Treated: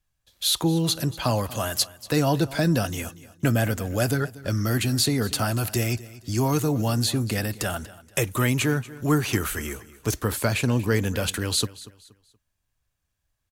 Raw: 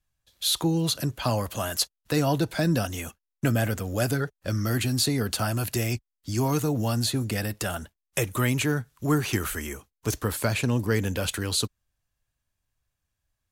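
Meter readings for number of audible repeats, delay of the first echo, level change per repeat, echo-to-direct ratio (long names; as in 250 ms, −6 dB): 2, 237 ms, −10.0 dB, −18.0 dB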